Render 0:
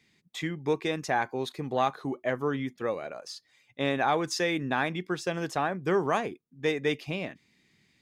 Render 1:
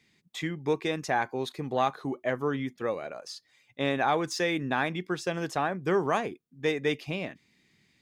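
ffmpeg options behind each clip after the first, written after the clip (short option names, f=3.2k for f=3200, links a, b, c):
-af "deesser=0.65"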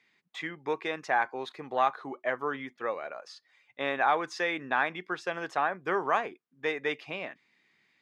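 -af "bandpass=f=1.3k:t=q:w=0.82:csg=0,volume=3dB"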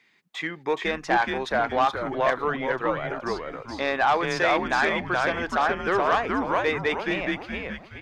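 -filter_complex "[0:a]asplit=6[a][b][c][d][e][f];[b]adelay=422,afreqshift=-120,volume=-3dB[g];[c]adelay=844,afreqshift=-240,volume=-11.6dB[h];[d]adelay=1266,afreqshift=-360,volume=-20.3dB[i];[e]adelay=1688,afreqshift=-480,volume=-28.9dB[j];[f]adelay=2110,afreqshift=-600,volume=-37.5dB[k];[a][g][h][i][j][k]amix=inputs=6:normalize=0,aeval=exprs='0.266*(cos(1*acos(clip(val(0)/0.266,-1,1)))-cos(1*PI/2))+0.0335*(cos(5*acos(clip(val(0)/0.266,-1,1)))-cos(5*PI/2))':c=same,volume=2dB"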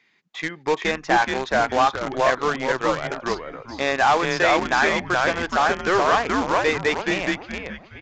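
-filter_complex "[0:a]asplit=2[a][b];[b]acrusher=bits=3:mix=0:aa=0.000001,volume=-5.5dB[c];[a][c]amix=inputs=2:normalize=0,aresample=16000,aresample=44100"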